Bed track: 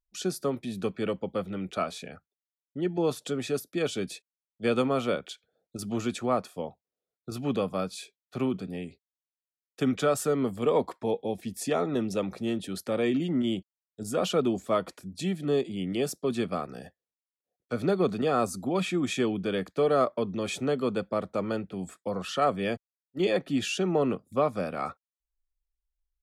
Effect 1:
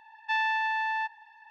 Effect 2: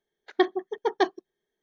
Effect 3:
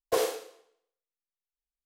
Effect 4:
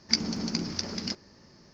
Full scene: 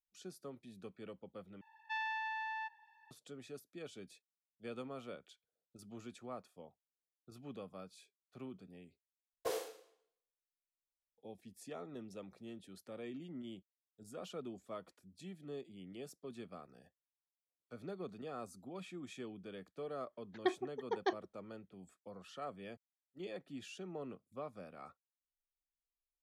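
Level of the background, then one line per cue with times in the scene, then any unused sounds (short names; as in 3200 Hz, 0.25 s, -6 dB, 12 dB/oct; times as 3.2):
bed track -20 dB
1.61 replace with 1 -12 dB
9.33 replace with 3 -12 dB
20.06 add 2 -12 dB
not used: 4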